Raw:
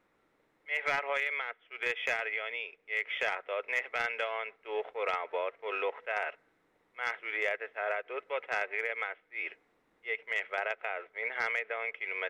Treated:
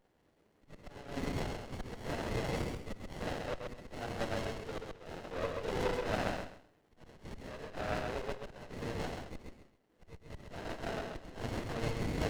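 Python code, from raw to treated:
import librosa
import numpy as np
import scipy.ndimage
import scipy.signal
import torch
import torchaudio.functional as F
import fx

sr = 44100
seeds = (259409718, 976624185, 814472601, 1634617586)

p1 = fx.phase_scramble(x, sr, seeds[0], window_ms=100)
p2 = scipy.signal.sosfilt(scipy.signal.butter(2, 81.0, 'highpass', fs=sr, output='sos'), p1)
p3 = fx.high_shelf(p2, sr, hz=2900.0, db=10.0)
p4 = fx.hum_notches(p3, sr, base_hz=60, count=9)
p5 = fx.auto_swell(p4, sr, attack_ms=699.0)
p6 = p5 + fx.echo_feedback(p5, sr, ms=132, feedback_pct=23, wet_db=-4.0, dry=0)
p7 = fx.running_max(p6, sr, window=33)
y = F.gain(torch.from_numpy(p7), 1.5).numpy()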